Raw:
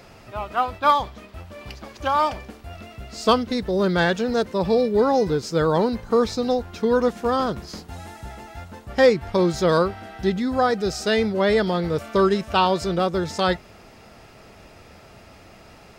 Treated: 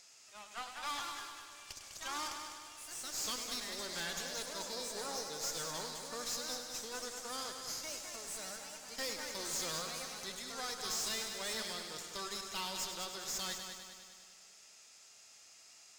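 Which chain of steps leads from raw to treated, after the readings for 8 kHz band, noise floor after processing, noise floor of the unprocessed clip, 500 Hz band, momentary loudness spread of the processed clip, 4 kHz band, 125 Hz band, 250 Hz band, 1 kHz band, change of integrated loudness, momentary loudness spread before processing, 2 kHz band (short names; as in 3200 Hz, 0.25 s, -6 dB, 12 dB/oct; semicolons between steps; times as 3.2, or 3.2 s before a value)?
+2.5 dB, -60 dBFS, -48 dBFS, -27.0 dB, 17 LU, -7.5 dB, -29.0 dB, -28.5 dB, -21.5 dB, -18.5 dB, 19 LU, -15.5 dB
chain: band-pass 7000 Hz, Q 3.2; tube stage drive 46 dB, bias 0.8; echoes that change speed 0.282 s, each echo +3 st, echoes 2, each echo -6 dB; on a send: multi-head echo 0.101 s, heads first and second, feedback 58%, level -9.5 dB; on the sum: gain +10 dB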